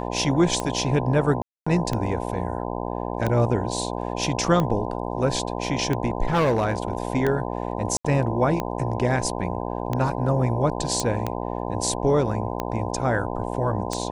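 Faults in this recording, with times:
mains buzz 60 Hz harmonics 17 −29 dBFS
scratch tick 45 rpm −12 dBFS
0:01.42–0:01.67: drop-out 245 ms
0:06.28–0:07.07: clipping −16.5 dBFS
0:07.97–0:08.04: drop-out 75 ms
0:11.00: click −10 dBFS

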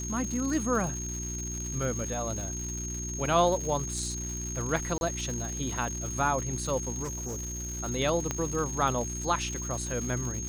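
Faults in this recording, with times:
surface crackle 290 per second −35 dBFS
mains hum 60 Hz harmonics 6 −37 dBFS
whistle 6,500 Hz −36 dBFS
0:04.98–0:05.01: drop-out 31 ms
0:07.03–0:07.80: clipping −31.5 dBFS
0:08.31: click −15 dBFS

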